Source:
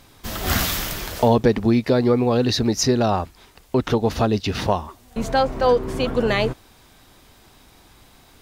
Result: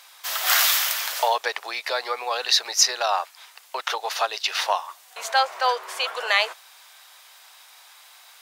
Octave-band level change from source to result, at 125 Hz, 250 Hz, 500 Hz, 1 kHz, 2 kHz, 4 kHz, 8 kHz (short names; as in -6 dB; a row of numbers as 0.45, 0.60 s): under -40 dB, under -30 dB, -10.5 dB, +0.5 dB, +4.5 dB, +5.5 dB, +5.5 dB